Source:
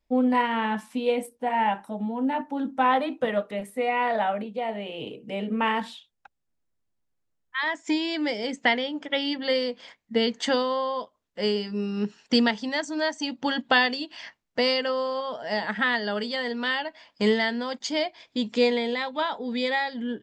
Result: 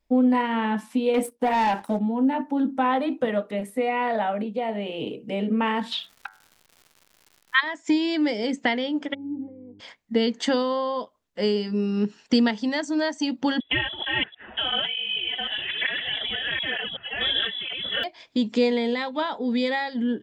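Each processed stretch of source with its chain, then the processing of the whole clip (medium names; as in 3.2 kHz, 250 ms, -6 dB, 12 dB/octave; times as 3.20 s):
1.14–1.99 s: bass shelf 140 Hz -8.5 dB + waveshaping leveller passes 2
5.91–7.59 s: high-order bell 2.2 kHz +15.5 dB 2.9 oct + de-hum 95.62 Hz, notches 23 + crackle 220 per s -43 dBFS
9.13–9.79 s: compression 10:1, threshold -31 dBFS + mains buzz 100 Hz, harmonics 4, -46 dBFS -5 dB/octave + cascade formant filter u
13.60–18.04 s: chunks repeated in reverse 374 ms, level -0.5 dB + frequency inversion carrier 3.6 kHz + cancelling through-zero flanger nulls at 1.1 Hz, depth 7.3 ms
whole clip: compression 1.5:1, threshold -32 dBFS; dynamic bell 280 Hz, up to +6 dB, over -42 dBFS, Q 0.95; trim +2.5 dB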